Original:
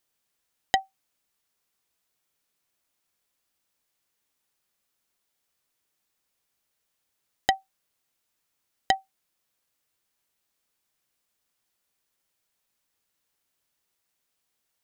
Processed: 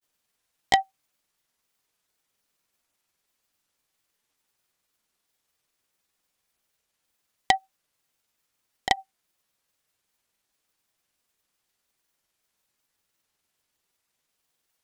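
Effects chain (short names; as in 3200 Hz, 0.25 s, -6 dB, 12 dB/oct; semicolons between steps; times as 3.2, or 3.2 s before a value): grains, spray 24 ms; Doppler distortion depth 0.17 ms; gain +3.5 dB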